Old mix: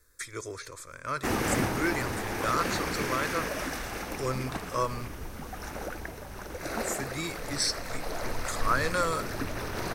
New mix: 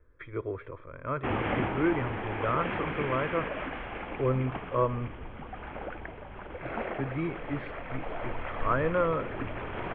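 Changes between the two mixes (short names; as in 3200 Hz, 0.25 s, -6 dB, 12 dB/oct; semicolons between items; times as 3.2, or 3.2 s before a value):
speech: add tilt shelf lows +9 dB, about 1200 Hz; master: add rippled Chebyshev low-pass 3300 Hz, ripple 3 dB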